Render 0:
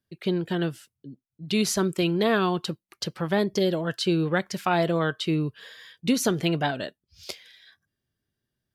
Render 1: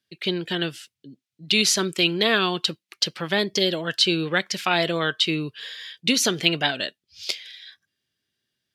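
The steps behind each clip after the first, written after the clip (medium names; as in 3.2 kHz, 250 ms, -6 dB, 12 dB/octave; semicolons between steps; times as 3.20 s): frequency weighting D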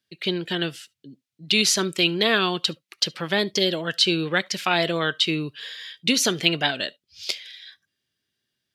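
reverberation, pre-delay 35 ms, DRR 27.5 dB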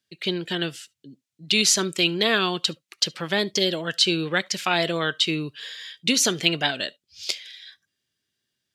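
peaking EQ 7.3 kHz +5 dB 0.71 oct; trim -1 dB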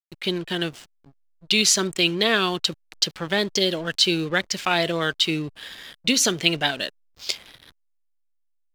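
hysteresis with a dead band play -34.5 dBFS; trim +1 dB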